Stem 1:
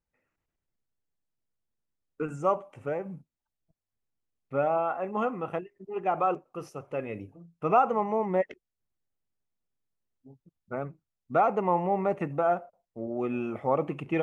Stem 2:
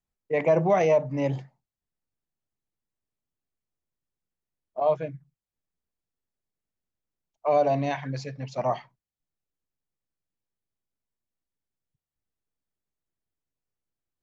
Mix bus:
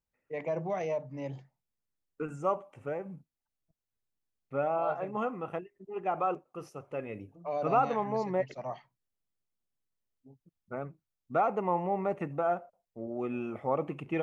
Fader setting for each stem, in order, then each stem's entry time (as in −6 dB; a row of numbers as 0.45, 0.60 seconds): −4.0, −12.0 decibels; 0.00, 0.00 seconds